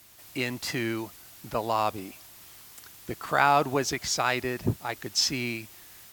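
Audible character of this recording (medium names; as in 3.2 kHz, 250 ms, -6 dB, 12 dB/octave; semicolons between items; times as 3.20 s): noise floor -50 dBFS; spectral tilt -4.0 dB/octave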